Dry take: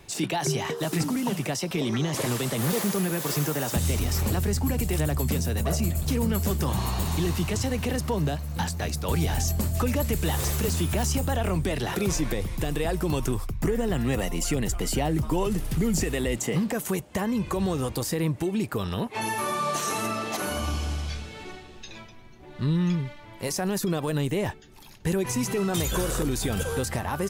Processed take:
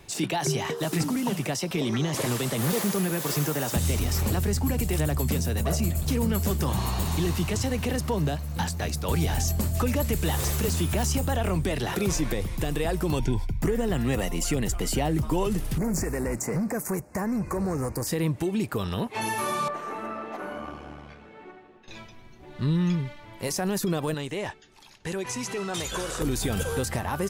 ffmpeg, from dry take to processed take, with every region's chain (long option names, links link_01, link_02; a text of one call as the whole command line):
ffmpeg -i in.wav -filter_complex "[0:a]asettb=1/sr,asplit=3[link_01][link_02][link_03];[link_01]atrim=end=13.194[link_04];[link_02]atrim=start=13.19:end=13.6,asetpts=PTS-STARTPTS,afade=type=in:duration=0.004:curve=qsin,afade=type=out:start_time=0.406:duration=0.004:curve=qsin,acrossover=split=5800[link_05][link_06];[link_06]acompressor=threshold=-59dB:ratio=4:attack=1:release=60[link_07];[link_05][link_07]amix=inputs=2:normalize=0,asuperstop=centerf=1200:order=20:qfactor=3.3,aecho=1:1:0.9:0.41,atrim=end_sample=18081[link_08];[link_03]atrim=start=13.596[link_09];[link_04][link_08]acrossfade=duration=0.004:curve1=hsin:curve2=qsin[link_10];[link_10][link_09]acrossfade=duration=0.004:curve1=qsin:curve2=hsin,asettb=1/sr,asplit=3[link_11][link_12][link_13];[link_11]atrim=end=15.784[link_14];[link_12]atrim=start=15.78:end=18.07,asetpts=PTS-STARTPTS,afade=type=in:duration=0.004:curve=qsin,afade=type=out:start_time=2.286:duration=0.004:curve=qsin,asoftclip=type=hard:threshold=-23.5dB,asuperstop=centerf=3300:order=4:qfactor=1.1[link_15];[link_13]atrim=start=18.066[link_16];[link_14][link_15]acrossfade=duration=0.004:curve1=hsin:curve2=qsin[link_17];[link_17][link_16]acrossfade=duration=0.004:curve1=qsin:curve2=hsin,asettb=1/sr,asplit=3[link_18][link_19][link_20];[link_18]atrim=end=19.684[link_21];[link_19]atrim=start=19.68:end=21.88,asetpts=PTS-STARTPTS,afade=type=in:duration=0.004:curve=qsin,afade=type=out:start_time=2.196:duration=0.004:curve=qsin,aeval=exprs='(tanh(12.6*val(0)+0.65)-tanh(0.65))/12.6':channel_layout=same,acrossover=split=180 2100:gain=0.126 1 0.0708[link_22][link_23][link_24];[link_22][link_23][link_24]amix=inputs=3:normalize=0[link_25];[link_20]atrim=start=21.876[link_26];[link_21][link_25]acrossfade=duration=0.004:curve1=hsin:curve2=qsin[link_27];[link_27][link_26]acrossfade=duration=0.004:curve1=qsin:curve2=hsin,asettb=1/sr,asplit=3[link_28][link_29][link_30];[link_28]atrim=end=24.144[link_31];[link_29]atrim=start=24.14:end=26.21,asetpts=PTS-STARTPTS,afade=type=in:duration=0.004:curve=qsin,afade=type=out:start_time=2.066:duration=0.004:curve=qsin,lowpass=8000,lowshelf=frequency=350:gain=-11[link_32];[link_30]atrim=start=26.206[link_33];[link_31][link_32]acrossfade=duration=0.004:curve1=hsin:curve2=qsin[link_34];[link_34][link_33]acrossfade=duration=0.004:curve1=qsin:curve2=hsin" out.wav